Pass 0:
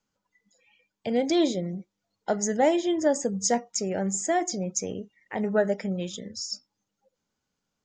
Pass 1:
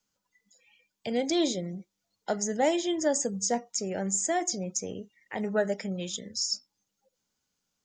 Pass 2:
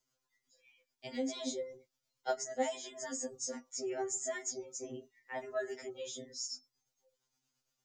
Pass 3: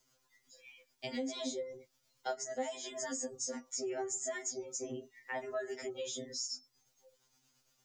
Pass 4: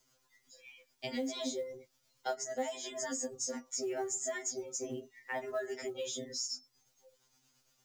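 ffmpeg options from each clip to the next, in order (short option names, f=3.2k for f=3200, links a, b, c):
-filter_complex "[0:a]highshelf=f=3k:g=10.5,acrossover=split=460|1200[a][b][c];[c]alimiter=limit=-14dB:level=0:latency=1:release=249[d];[a][b][d]amix=inputs=3:normalize=0,volume=-4dB"
-filter_complex "[0:a]acrossover=split=260|1700|5900[a][b][c][d];[a]acompressor=threshold=-43dB:ratio=4[e];[b]acompressor=threshold=-29dB:ratio=4[f];[c]acompressor=threshold=-46dB:ratio=4[g];[d]acompressor=threshold=-39dB:ratio=4[h];[e][f][g][h]amix=inputs=4:normalize=0,tremolo=f=8.7:d=0.45,afftfilt=real='re*2.45*eq(mod(b,6),0)':imag='im*2.45*eq(mod(b,6),0)':win_size=2048:overlap=0.75,volume=1dB"
-af "acompressor=threshold=-51dB:ratio=2.5,volume=10dB"
-af "acrusher=bits=8:mode=log:mix=0:aa=0.000001,volume=1.5dB"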